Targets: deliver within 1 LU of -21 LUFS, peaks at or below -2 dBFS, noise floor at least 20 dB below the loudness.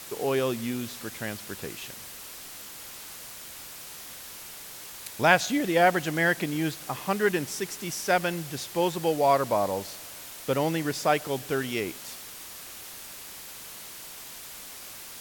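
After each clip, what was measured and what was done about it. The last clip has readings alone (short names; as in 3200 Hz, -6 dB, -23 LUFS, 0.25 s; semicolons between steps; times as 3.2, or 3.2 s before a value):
noise floor -43 dBFS; noise floor target -48 dBFS; loudness -27.5 LUFS; peak -4.5 dBFS; loudness target -21.0 LUFS
-> denoiser 6 dB, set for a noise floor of -43 dBFS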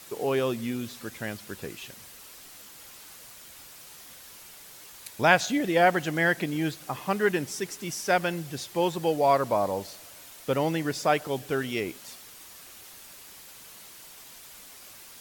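noise floor -48 dBFS; loudness -27.0 LUFS; peak -4.5 dBFS; loudness target -21.0 LUFS
-> gain +6 dB; limiter -2 dBFS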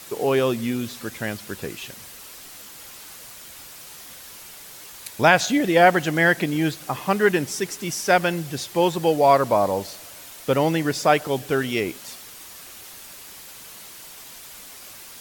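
loudness -21.5 LUFS; peak -2.0 dBFS; noise floor -42 dBFS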